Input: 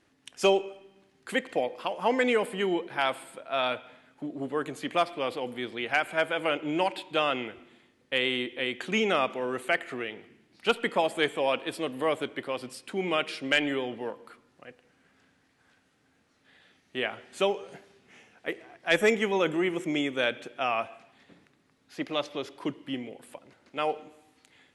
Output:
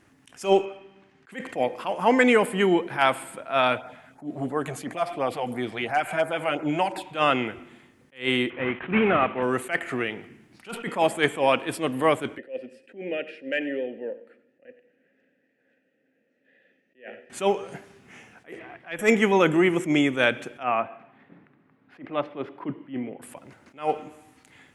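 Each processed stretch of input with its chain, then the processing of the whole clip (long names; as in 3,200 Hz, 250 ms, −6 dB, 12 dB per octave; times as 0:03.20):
0:00.65–0:01.32: low-pass filter 3,500 Hz + spectral tilt +1.5 dB per octave
0:03.77–0:07.15: parametric band 710 Hz +7.5 dB 0.44 octaves + downward compressor 1.5 to 1, threshold −32 dBFS + auto-filter notch sine 2.9 Hz 260–3,200 Hz
0:08.50–0:09.43: variable-slope delta modulation 16 kbit/s + high-pass filter 85 Hz
0:12.38–0:17.30: formant filter e + parametric band 240 Hz +12.5 dB 1.2 octaves + single-tap delay 92 ms −16.5 dB
0:18.59–0:18.99: high shelf with overshoot 4,400 Hz −12.5 dB, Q 1.5 + downward compressor 4 to 1, threshold −37 dBFS
0:20.63–0:23.22: high-pass filter 150 Hz + high-frequency loss of the air 500 metres
whole clip: octave-band graphic EQ 125/500/4,000 Hz +3/−4/−8 dB; level that may rise only so fast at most 220 dB per second; level +9 dB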